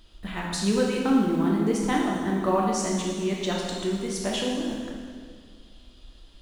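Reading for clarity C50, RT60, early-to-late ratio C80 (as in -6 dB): 0.5 dB, 2.0 s, 2.5 dB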